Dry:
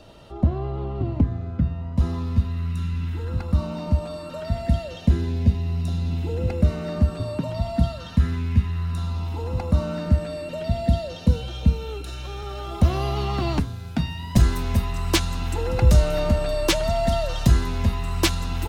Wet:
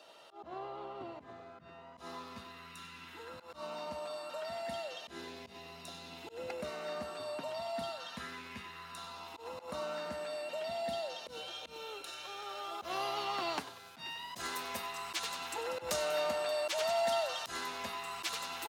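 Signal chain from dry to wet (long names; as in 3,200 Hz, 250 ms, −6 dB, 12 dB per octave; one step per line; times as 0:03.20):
high-pass filter 650 Hz 12 dB per octave
echo with shifted repeats 95 ms, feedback 47%, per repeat +120 Hz, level −16 dB
volume swells 106 ms
level −4.5 dB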